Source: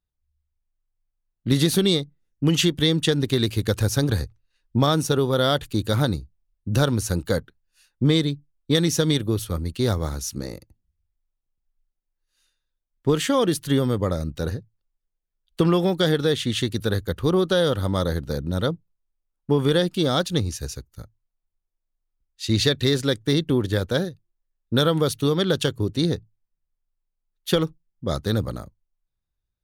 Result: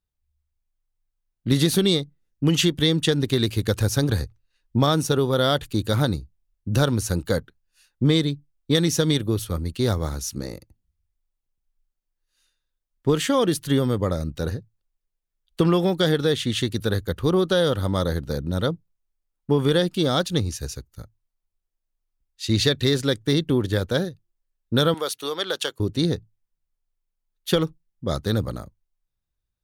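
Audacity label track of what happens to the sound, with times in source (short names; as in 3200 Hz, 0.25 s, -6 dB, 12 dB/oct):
24.940000	25.800000	HPF 600 Hz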